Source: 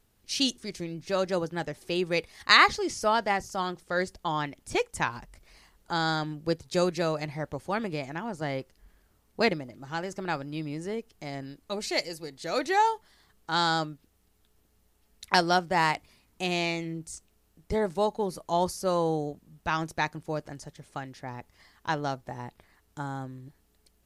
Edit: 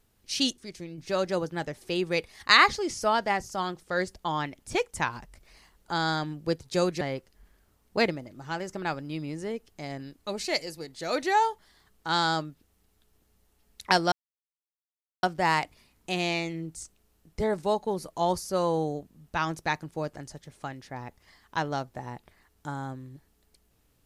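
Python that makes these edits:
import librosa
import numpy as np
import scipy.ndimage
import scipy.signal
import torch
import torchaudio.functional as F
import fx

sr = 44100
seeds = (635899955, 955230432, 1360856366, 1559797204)

y = fx.edit(x, sr, fx.clip_gain(start_s=0.53, length_s=0.45, db=-4.5),
    fx.cut(start_s=7.01, length_s=1.43),
    fx.insert_silence(at_s=15.55, length_s=1.11), tone=tone)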